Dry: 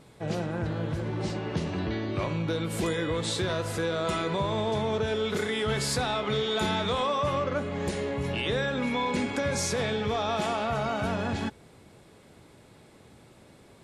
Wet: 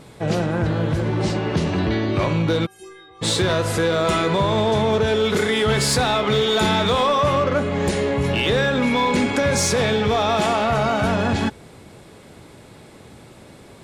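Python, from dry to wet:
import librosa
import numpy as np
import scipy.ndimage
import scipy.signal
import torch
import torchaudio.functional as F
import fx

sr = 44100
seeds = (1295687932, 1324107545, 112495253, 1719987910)

p1 = fx.stiff_resonator(x, sr, f0_hz=380.0, decay_s=0.8, stiffness=0.008, at=(2.65, 3.21), fade=0.02)
p2 = 10.0 ** (-24.5 / 20.0) * (np.abs((p1 / 10.0 ** (-24.5 / 20.0) + 3.0) % 4.0 - 2.0) - 1.0)
p3 = p1 + (p2 * librosa.db_to_amplitude(-8.0))
y = p3 * librosa.db_to_amplitude(7.0)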